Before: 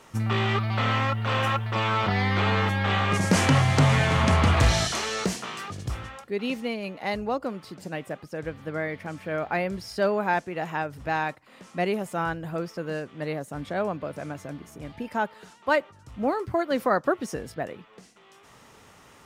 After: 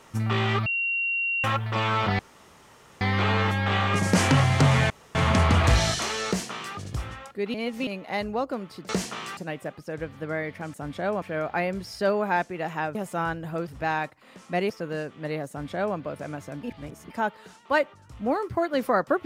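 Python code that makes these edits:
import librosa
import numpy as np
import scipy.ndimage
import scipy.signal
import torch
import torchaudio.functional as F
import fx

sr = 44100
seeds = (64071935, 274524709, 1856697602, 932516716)

y = fx.edit(x, sr, fx.bleep(start_s=0.66, length_s=0.78, hz=2750.0, db=-23.5),
    fx.insert_room_tone(at_s=2.19, length_s=0.82),
    fx.insert_room_tone(at_s=4.08, length_s=0.25),
    fx.duplicate(start_s=5.2, length_s=0.48, to_s=7.82),
    fx.reverse_span(start_s=6.47, length_s=0.33),
    fx.move(start_s=11.95, length_s=0.72, to_s=10.92),
    fx.duplicate(start_s=13.46, length_s=0.48, to_s=9.19),
    fx.reverse_span(start_s=14.6, length_s=0.47), tone=tone)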